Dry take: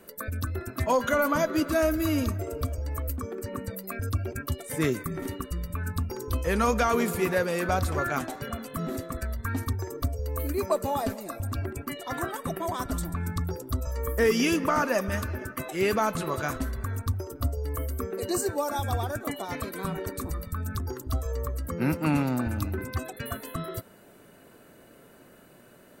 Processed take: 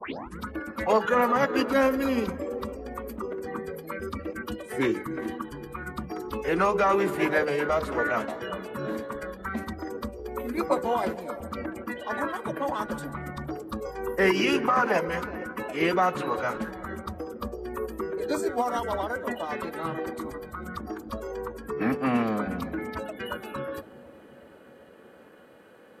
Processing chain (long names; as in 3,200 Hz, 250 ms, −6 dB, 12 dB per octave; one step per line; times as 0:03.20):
turntable start at the beginning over 0.39 s
mains-hum notches 60/120/180/240/300/360/420/480/540/600 Hz
phase-vocoder pitch shift with formants kept −3 semitones
in parallel at −6.5 dB: asymmetric clip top −20 dBFS
on the sum: three-way crossover with the lows and the highs turned down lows −17 dB, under 190 Hz, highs −14 dB, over 3,500 Hz
on a send: bucket-brigade delay 368 ms, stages 2,048, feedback 67%, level −17.5 dB